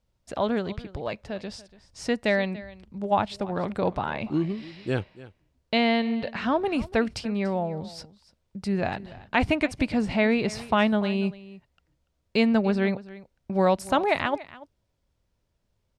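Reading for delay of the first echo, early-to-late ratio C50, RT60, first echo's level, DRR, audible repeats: 288 ms, no reverb audible, no reverb audible, −18.5 dB, no reverb audible, 1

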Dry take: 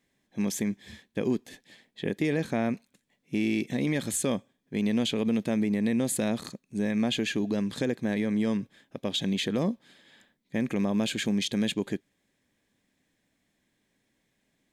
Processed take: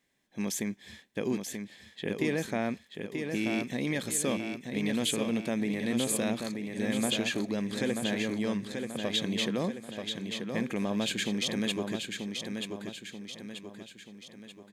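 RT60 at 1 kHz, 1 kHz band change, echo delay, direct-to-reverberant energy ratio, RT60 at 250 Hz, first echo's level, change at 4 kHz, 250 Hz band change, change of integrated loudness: no reverb audible, 0.0 dB, 934 ms, no reverb audible, no reverb audible, −5.5 dB, +1.0 dB, −3.5 dB, −3.0 dB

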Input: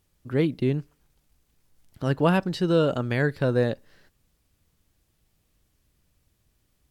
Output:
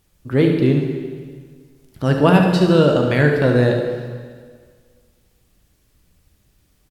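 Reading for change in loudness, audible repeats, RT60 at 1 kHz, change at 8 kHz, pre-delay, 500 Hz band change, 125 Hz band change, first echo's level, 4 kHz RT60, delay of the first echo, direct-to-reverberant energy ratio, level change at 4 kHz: +8.5 dB, 1, 1.7 s, can't be measured, 8 ms, +8.5 dB, +9.0 dB, −9.5 dB, 1.6 s, 73 ms, 2.0 dB, +8.5 dB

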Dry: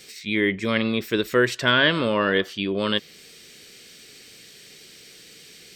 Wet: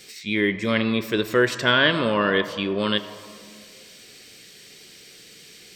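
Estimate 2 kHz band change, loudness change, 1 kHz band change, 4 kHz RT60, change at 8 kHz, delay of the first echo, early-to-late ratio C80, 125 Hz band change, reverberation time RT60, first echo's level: 0.0 dB, +0.5 dB, +1.0 dB, 1.2 s, 0.0 dB, no echo audible, 11.0 dB, +0.5 dB, 2.2 s, no echo audible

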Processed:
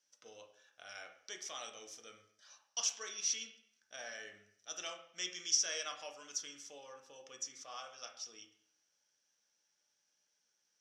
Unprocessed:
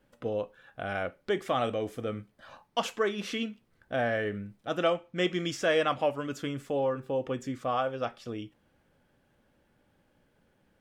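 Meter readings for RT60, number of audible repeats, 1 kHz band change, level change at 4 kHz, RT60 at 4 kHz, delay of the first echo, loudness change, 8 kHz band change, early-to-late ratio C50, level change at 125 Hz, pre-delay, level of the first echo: 0.65 s, no echo audible, −18.5 dB, −2.5 dB, 0.60 s, no echo audible, −8.0 dB, +12.0 dB, 9.5 dB, below −30 dB, 4 ms, no echo audible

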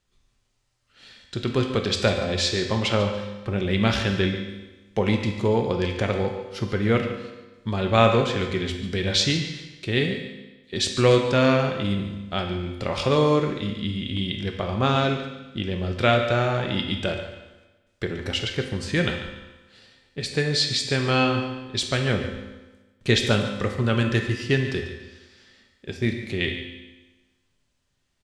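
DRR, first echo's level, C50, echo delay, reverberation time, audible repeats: 2.5 dB, −12.5 dB, 5.0 dB, 143 ms, 1.2 s, 1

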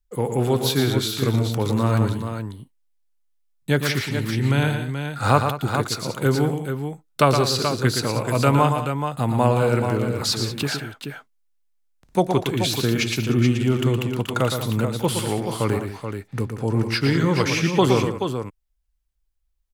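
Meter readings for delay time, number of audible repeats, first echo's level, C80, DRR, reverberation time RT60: 116 ms, 3, −7.0 dB, no reverb audible, no reverb audible, no reverb audible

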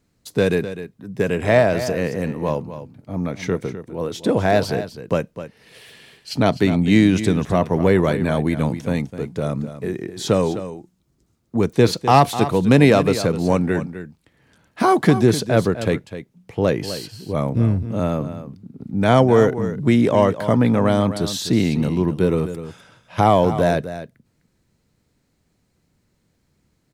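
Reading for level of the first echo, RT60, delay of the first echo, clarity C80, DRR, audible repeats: −12.0 dB, no reverb audible, 254 ms, no reverb audible, no reverb audible, 1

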